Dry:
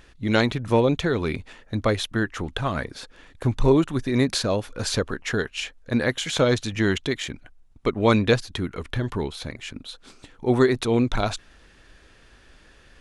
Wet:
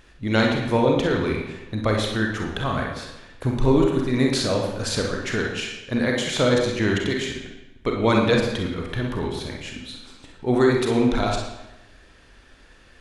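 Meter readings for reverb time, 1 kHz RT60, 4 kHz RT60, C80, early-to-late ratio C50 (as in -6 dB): 1.0 s, 1.0 s, 0.85 s, 5.5 dB, 3.0 dB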